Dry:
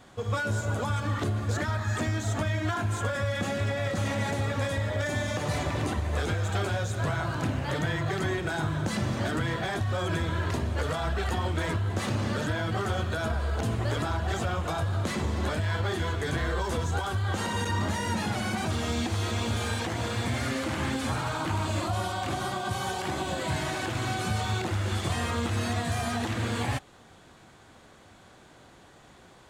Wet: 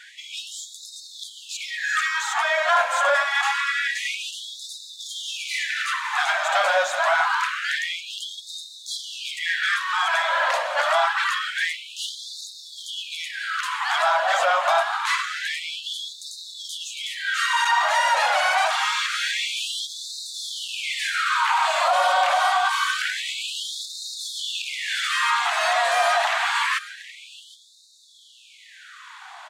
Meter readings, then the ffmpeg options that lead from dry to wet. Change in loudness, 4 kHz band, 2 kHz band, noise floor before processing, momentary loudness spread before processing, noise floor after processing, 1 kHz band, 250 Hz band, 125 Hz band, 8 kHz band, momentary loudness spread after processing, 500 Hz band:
+7.0 dB, +11.0 dB, +11.0 dB, -54 dBFS, 1 LU, -46 dBFS, +10.5 dB, under -40 dB, under -40 dB, +7.0 dB, 15 LU, +3.5 dB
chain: -filter_complex "[0:a]acontrast=79,asplit=2[a][b];[b]aecho=0:1:771:0.15[c];[a][c]amix=inputs=2:normalize=0,asplit=2[d][e];[e]highpass=f=720:p=1,volume=15dB,asoftclip=type=tanh:threshold=-9dB[f];[d][f]amix=inputs=2:normalize=0,lowpass=f=2.2k:p=1,volume=-6dB,afftfilt=real='re*gte(b*sr/1024,510*pow(3600/510,0.5+0.5*sin(2*PI*0.26*pts/sr)))':imag='im*gte(b*sr/1024,510*pow(3600/510,0.5+0.5*sin(2*PI*0.26*pts/sr)))':win_size=1024:overlap=0.75,volume=1.5dB"

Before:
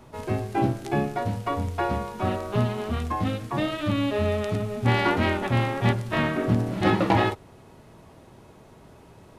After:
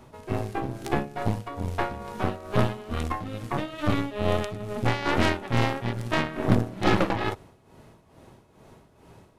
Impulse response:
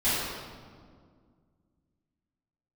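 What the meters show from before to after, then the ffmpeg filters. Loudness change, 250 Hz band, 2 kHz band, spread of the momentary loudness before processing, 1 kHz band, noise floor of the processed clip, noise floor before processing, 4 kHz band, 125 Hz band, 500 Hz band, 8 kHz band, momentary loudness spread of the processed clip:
-2.5 dB, -2.5 dB, -1.5 dB, 7 LU, -2.5 dB, -58 dBFS, -51 dBFS, -0.5 dB, -2.5 dB, -2.0 dB, +1.0 dB, 8 LU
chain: -af "tremolo=f=2.3:d=0.7,aeval=exprs='0.376*(cos(1*acos(clip(val(0)/0.376,-1,1)))-cos(1*PI/2))+0.075*(cos(4*acos(clip(val(0)/0.376,-1,1)))-cos(4*PI/2))+0.119*(cos(6*acos(clip(val(0)/0.376,-1,1)))-cos(6*PI/2))':c=same"

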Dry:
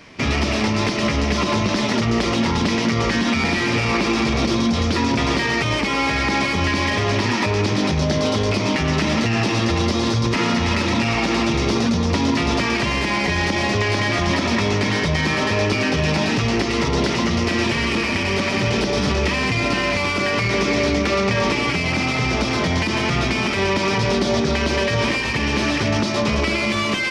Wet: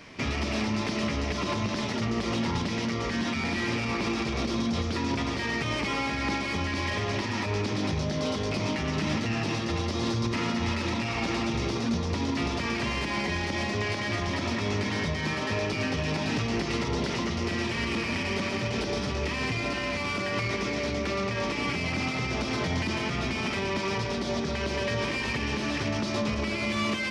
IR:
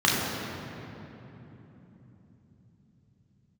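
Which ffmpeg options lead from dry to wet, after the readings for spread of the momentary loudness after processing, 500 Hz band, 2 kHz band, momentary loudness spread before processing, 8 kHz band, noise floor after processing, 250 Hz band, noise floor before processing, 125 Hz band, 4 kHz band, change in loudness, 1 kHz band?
1 LU, -10.0 dB, -9.5 dB, 1 LU, -10.0 dB, -31 dBFS, -9.0 dB, -22 dBFS, -9.0 dB, -10.0 dB, -9.5 dB, -9.5 dB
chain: -filter_complex "[0:a]alimiter=limit=-16.5dB:level=0:latency=1:release=391,asplit=2[a][b];[1:a]atrim=start_sample=2205,adelay=43[c];[b][c]afir=irnorm=-1:irlink=0,volume=-31dB[d];[a][d]amix=inputs=2:normalize=0,volume=-3.5dB"

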